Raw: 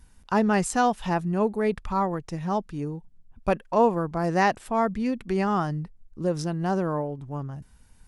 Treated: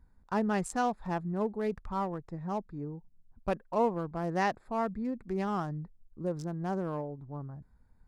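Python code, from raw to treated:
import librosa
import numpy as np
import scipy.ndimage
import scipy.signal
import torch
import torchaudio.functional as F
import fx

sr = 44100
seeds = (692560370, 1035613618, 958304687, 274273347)

y = fx.wiener(x, sr, points=15)
y = F.gain(torch.from_numpy(y), -7.5).numpy()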